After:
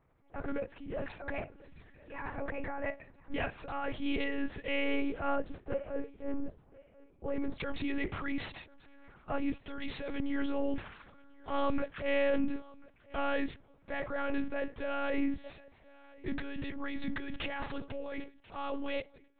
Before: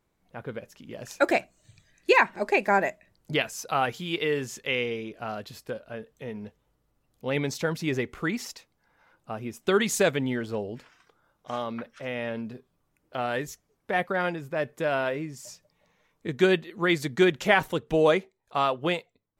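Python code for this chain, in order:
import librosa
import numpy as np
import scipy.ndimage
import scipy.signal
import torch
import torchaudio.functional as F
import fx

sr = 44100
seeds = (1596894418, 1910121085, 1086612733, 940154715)

y = fx.lowpass(x, sr, hz=fx.steps((0.0, 1900.0), (5.36, 1000.0), (7.6, 3500.0)), slope=12)
y = fx.over_compress(y, sr, threshold_db=-32.0, ratio=-1.0)
y = fx.transient(y, sr, attack_db=-8, sustain_db=4)
y = fx.echo_feedback(y, sr, ms=1038, feedback_pct=18, wet_db=-23)
y = fx.lpc_monotone(y, sr, seeds[0], pitch_hz=280.0, order=8)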